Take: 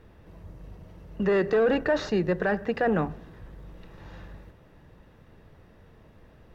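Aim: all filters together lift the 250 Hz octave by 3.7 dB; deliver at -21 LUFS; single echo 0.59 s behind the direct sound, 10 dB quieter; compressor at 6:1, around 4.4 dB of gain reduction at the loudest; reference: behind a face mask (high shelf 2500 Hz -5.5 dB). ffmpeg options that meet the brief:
-af "equalizer=f=250:t=o:g=5,acompressor=threshold=-22dB:ratio=6,highshelf=f=2.5k:g=-5.5,aecho=1:1:590:0.316,volume=7dB"

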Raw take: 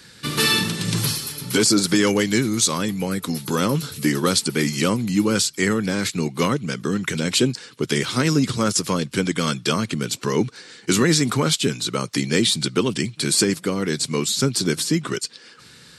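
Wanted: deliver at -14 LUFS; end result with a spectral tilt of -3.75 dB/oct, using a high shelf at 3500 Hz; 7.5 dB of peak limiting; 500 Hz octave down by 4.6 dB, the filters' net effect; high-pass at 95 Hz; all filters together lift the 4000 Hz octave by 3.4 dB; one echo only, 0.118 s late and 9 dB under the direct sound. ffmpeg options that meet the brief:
-af "highpass=95,equalizer=f=500:t=o:g=-6,highshelf=f=3.5k:g=-6.5,equalizer=f=4k:t=o:g=8.5,alimiter=limit=-12dB:level=0:latency=1,aecho=1:1:118:0.355,volume=8.5dB"

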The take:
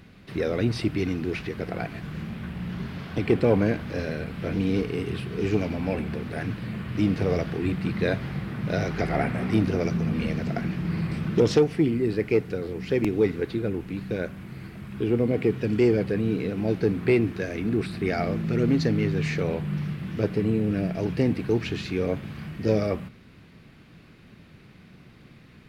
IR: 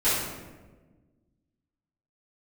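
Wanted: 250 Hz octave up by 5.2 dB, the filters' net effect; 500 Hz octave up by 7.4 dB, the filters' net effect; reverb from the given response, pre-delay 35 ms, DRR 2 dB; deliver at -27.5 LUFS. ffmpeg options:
-filter_complex "[0:a]equalizer=f=250:t=o:g=4.5,equalizer=f=500:t=o:g=7.5,asplit=2[a][b];[1:a]atrim=start_sample=2205,adelay=35[c];[b][c]afir=irnorm=-1:irlink=0,volume=-16.5dB[d];[a][d]amix=inputs=2:normalize=0,volume=-9.5dB"

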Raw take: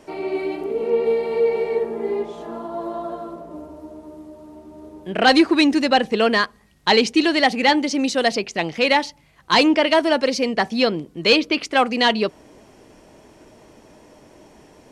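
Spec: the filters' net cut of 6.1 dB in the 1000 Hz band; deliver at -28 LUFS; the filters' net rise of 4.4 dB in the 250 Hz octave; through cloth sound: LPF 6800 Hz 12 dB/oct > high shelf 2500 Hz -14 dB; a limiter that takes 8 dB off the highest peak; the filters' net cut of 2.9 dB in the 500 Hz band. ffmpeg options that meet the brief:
-af "equalizer=f=250:t=o:g=7.5,equalizer=f=500:t=o:g=-4,equalizer=f=1k:t=o:g=-5,alimiter=limit=-11dB:level=0:latency=1,lowpass=6.8k,highshelf=f=2.5k:g=-14,volume=-6dB"

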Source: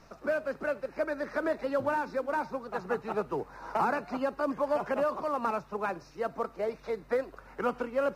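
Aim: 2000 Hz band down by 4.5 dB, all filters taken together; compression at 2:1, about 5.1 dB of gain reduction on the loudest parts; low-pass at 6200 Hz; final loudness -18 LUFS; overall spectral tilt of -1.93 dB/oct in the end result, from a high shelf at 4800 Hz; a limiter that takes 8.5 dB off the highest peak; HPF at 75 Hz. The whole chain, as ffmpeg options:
-af "highpass=75,lowpass=6.2k,equalizer=f=2k:t=o:g=-7.5,highshelf=f=4.8k:g=4,acompressor=threshold=-34dB:ratio=2,volume=23dB,alimiter=limit=-8.5dB:level=0:latency=1"

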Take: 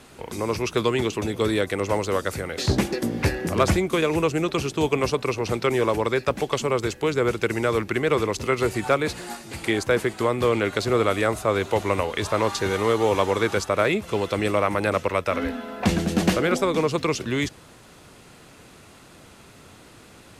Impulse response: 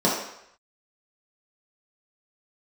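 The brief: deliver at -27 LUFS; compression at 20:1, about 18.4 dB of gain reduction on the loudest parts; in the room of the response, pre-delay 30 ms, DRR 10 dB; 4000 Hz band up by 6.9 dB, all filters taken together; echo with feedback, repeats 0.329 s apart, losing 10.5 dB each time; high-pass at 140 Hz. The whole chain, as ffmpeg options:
-filter_complex "[0:a]highpass=140,equalizer=f=4k:t=o:g=8.5,acompressor=threshold=-34dB:ratio=20,aecho=1:1:329|658|987:0.299|0.0896|0.0269,asplit=2[a][b];[1:a]atrim=start_sample=2205,adelay=30[c];[b][c]afir=irnorm=-1:irlink=0,volume=-27dB[d];[a][d]amix=inputs=2:normalize=0,volume=11dB"

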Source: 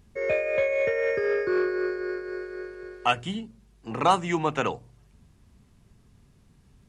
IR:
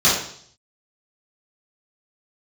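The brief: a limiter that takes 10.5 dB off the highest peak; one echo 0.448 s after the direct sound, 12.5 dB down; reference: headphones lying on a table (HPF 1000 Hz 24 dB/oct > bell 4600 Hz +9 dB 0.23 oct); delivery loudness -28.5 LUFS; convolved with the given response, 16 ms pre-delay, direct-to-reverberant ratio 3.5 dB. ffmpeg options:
-filter_complex "[0:a]alimiter=limit=-18.5dB:level=0:latency=1,aecho=1:1:448:0.237,asplit=2[a][b];[1:a]atrim=start_sample=2205,adelay=16[c];[b][c]afir=irnorm=-1:irlink=0,volume=-24.5dB[d];[a][d]amix=inputs=2:normalize=0,highpass=f=1k:w=0.5412,highpass=f=1k:w=1.3066,equalizer=f=4.6k:t=o:w=0.23:g=9,volume=5dB"

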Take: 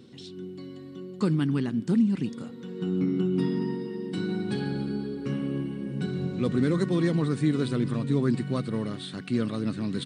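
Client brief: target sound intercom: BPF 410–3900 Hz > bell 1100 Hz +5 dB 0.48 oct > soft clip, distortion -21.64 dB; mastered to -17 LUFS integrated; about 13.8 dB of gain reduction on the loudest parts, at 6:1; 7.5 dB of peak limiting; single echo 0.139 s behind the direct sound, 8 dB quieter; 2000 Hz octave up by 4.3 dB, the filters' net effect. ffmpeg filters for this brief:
-af "equalizer=f=2k:t=o:g=5,acompressor=threshold=-35dB:ratio=6,alimiter=level_in=6.5dB:limit=-24dB:level=0:latency=1,volume=-6.5dB,highpass=410,lowpass=3.9k,equalizer=f=1.1k:t=o:w=0.48:g=5,aecho=1:1:139:0.398,asoftclip=threshold=-36dB,volume=30dB"

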